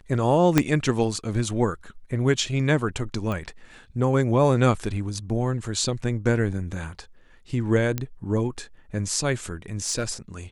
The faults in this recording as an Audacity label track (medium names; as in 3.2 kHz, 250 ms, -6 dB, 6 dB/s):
0.580000	0.580000	pop -3 dBFS
3.320000	3.320000	pop -18 dBFS
7.980000	7.980000	pop -12 dBFS
9.880000	10.040000	clipped -19.5 dBFS